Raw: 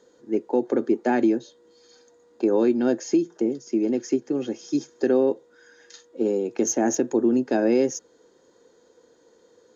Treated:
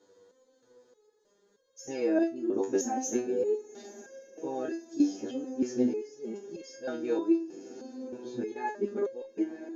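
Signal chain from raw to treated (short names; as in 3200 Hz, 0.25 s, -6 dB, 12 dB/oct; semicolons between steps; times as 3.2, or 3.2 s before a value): whole clip reversed; diffused feedback echo 1.026 s, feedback 61%, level -15.5 dB; stepped resonator 3.2 Hz 97–540 Hz; gain +4.5 dB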